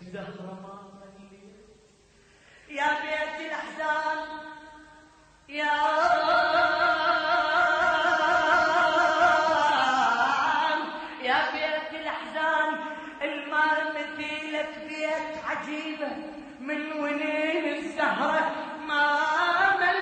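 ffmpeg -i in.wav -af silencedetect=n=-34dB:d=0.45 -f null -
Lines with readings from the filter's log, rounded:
silence_start: 0.74
silence_end: 2.71 | silence_duration: 1.97
silence_start: 4.53
silence_end: 5.50 | silence_duration: 0.97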